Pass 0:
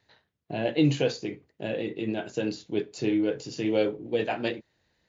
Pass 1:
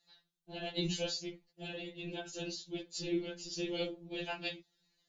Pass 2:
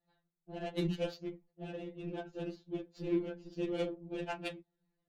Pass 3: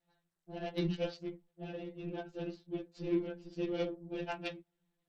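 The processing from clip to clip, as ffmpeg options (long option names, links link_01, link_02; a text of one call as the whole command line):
ffmpeg -i in.wav -af "equalizer=frequency=125:width_type=o:width=1:gain=-9,equalizer=frequency=250:width_type=o:width=1:gain=-9,equalizer=frequency=500:width_type=o:width=1:gain=-11,equalizer=frequency=1000:width_type=o:width=1:gain=-8,equalizer=frequency=2000:width_type=o:width=1:gain=-10,equalizer=frequency=4000:width_type=o:width=1:gain=3,afftfilt=real='hypot(re,im)*cos(2*PI*random(0))':imag='hypot(re,im)*sin(2*PI*random(1))':win_size=512:overlap=0.75,afftfilt=real='re*2.83*eq(mod(b,8),0)':imag='im*2.83*eq(mod(b,8),0)':win_size=2048:overlap=0.75,volume=8.5dB" out.wav
ffmpeg -i in.wav -af "adynamicsmooth=sensitivity=4.5:basefreq=980,volume=2.5dB" out.wav
ffmpeg -i in.wav -ar 32000 -c:a sbc -b:a 64k out.sbc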